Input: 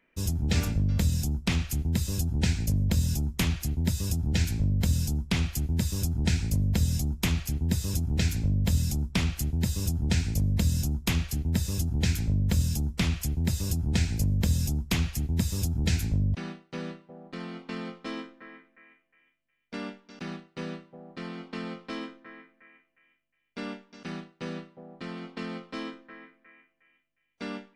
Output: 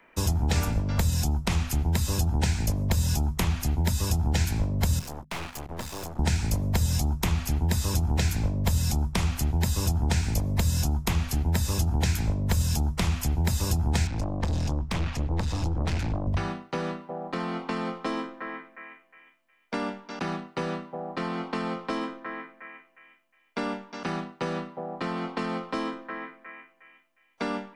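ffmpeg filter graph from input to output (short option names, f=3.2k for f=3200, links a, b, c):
-filter_complex "[0:a]asettb=1/sr,asplit=3[a][b][c];[a]atrim=end=4.994[d];[b]atrim=start=4.99:end=6.19,asetpts=PTS-STARTPTS,afade=t=in:d=0.004:c=qsin,afade=t=out:st=1.196:d=0.004:c=qsin,bass=f=250:g=-14,treble=f=4k:g=-7,aeval=exprs='(tanh(79.4*val(0)+0.6)-tanh(0.6))/79.4':c=same,aeval=exprs='sgn(val(0))*max(abs(val(0))-0.00211,0)':c=same[e];[c]atrim=start=6.186[f];[d][e]acrossfade=d=0.004:c1=hsin:c2=qsin[g];[g][f]acrossfade=d=0.004:c1=qsin:c2=hsin,asettb=1/sr,asplit=3[h][i][j];[h]atrim=end=14.074[k];[i]atrim=start=14.07:end=16.27,asetpts=PTS-STARTPTS,afade=t=in:d=0.004:c=qsin,afade=t=out:st=2.196:d=0.004:c=qsin,lowpass=4k,aeval=exprs='(tanh(31.6*val(0)+0.3)-tanh(0.3))/31.6':c=same,bandreject=f=390:w=9.1[l];[j]atrim=start=16.266[m];[k][l]acrossfade=d=0.004:c1=hsin:c2=qsin[n];[n][m]acrossfade=d=0.004:c1=qsin:c2=hsin,equalizer=f=930:w=0.95:g=11,bandreject=f=50:t=h:w=6,bandreject=f=100:t=h:w=6,bandreject=f=150:t=h:w=6,bandreject=f=200:t=h:w=6,bandreject=f=250:t=h:w=6,acrossover=split=90|570|6300[o][p][q][r];[o]acompressor=threshold=-33dB:ratio=4[s];[p]acompressor=threshold=-38dB:ratio=4[t];[q]acompressor=threshold=-42dB:ratio=4[u];[r]acompressor=threshold=-45dB:ratio=4[v];[s][t][u][v]amix=inputs=4:normalize=0,volume=8dB"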